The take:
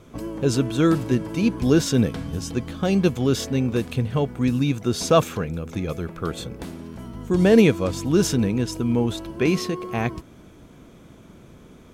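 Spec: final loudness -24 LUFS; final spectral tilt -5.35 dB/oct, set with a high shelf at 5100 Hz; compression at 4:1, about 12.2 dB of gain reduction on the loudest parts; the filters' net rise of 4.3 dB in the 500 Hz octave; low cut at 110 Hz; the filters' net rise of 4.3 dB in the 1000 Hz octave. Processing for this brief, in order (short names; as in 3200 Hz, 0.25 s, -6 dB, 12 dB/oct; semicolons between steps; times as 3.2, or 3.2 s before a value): HPF 110 Hz; bell 500 Hz +4.5 dB; bell 1000 Hz +4 dB; high shelf 5100 Hz +5 dB; compressor 4:1, threshold -22 dBFS; gain +3 dB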